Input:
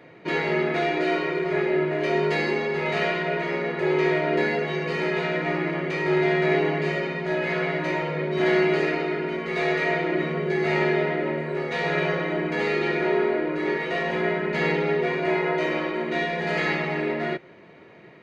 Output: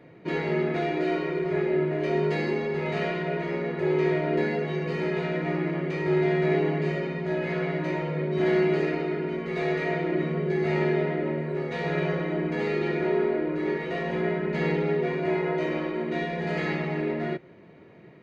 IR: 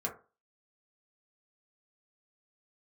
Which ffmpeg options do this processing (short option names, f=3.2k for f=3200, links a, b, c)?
-af "lowshelf=f=430:g=10.5,volume=-7.5dB"